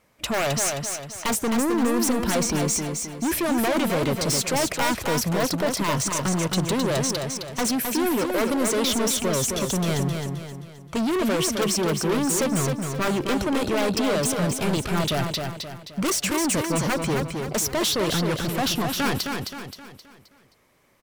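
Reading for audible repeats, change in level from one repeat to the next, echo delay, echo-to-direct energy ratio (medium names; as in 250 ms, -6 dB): 5, -7.5 dB, 263 ms, -4.0 dB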